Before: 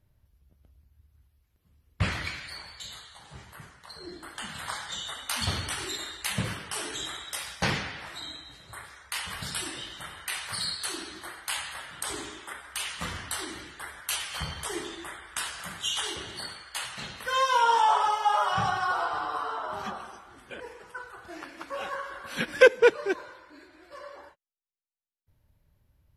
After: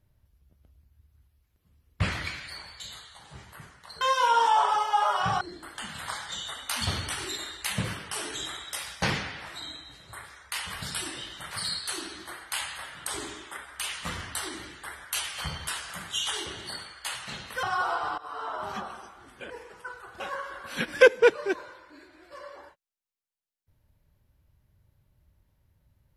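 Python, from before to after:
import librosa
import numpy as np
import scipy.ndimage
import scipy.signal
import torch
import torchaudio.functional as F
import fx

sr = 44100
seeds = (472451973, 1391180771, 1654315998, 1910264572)

y = fx.edit(x, sr, fx.cut(start_s=10.11, length_s=0.36),
    fx.cut(start_s=14.64, length_s=0.74),
    fx.move(start_s=17.33, length_s=1.4, to_s=4.01),
    fx.fade_in_from(start_s=19.28, length_s=0.32, floor_db=-19.0),
    fx.cut(start_s=21.3, length_s=0.5), tone=tone)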